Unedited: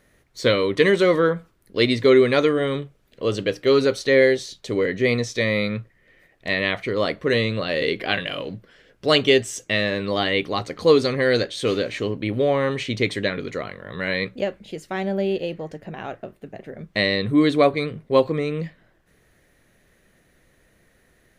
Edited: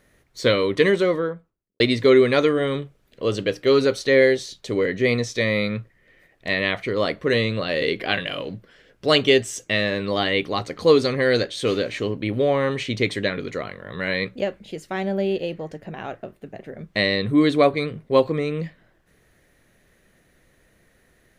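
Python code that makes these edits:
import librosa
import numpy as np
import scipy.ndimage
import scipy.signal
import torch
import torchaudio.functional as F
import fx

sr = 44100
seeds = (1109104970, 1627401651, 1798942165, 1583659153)

y = fx.studio_fade_out(x, sr, start_s=0.7, length_s=1.1)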